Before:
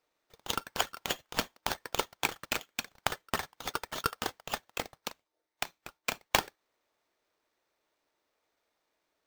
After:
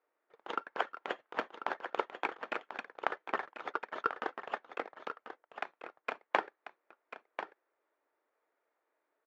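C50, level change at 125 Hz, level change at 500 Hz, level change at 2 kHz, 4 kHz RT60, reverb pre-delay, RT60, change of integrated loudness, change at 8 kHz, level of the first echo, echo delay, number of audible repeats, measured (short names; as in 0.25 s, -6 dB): none, under -15 dB, 0.0 dB, -2.5 dB, none, none, none, -4.5 dB, under -25 dB, -10.5 dB, 1.041 s, 1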